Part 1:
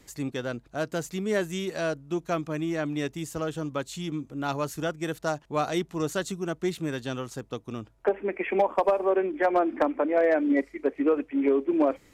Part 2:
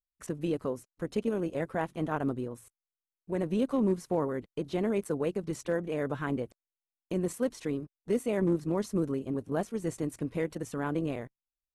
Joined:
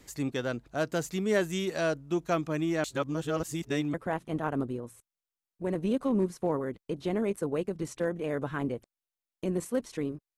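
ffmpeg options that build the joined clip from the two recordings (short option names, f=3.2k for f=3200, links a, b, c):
-filter_complex "[0:a]apad=whole_dur=10.37,atrim=end=10.37,asplit=2[a][b];[a]atrim=end=2.842[c];[b]atrim=start=2.838:end=3.942,asetpts=PTS-STARTPTS,areverse[d];[1:a]atrim=start=1.618:end=8.05[e];[c][d]acrossfade=d=0.004:c1=hsin:c2=hsin[f];[f][e]acrossfade=d=0.004:c1=hsin:c2=hsin"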